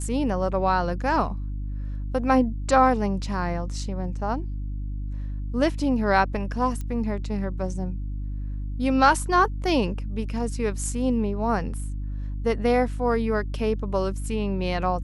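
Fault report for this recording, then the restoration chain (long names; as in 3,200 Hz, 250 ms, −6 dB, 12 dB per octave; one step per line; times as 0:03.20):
mains hum 50 Hz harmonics 6 −30 dBFS
0:06.81: click −21 dBFS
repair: click removal
hum removal 50 Hz, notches 6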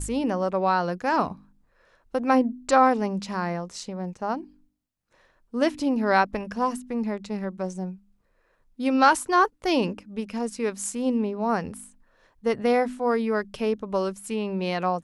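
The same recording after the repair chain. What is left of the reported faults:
none of them is left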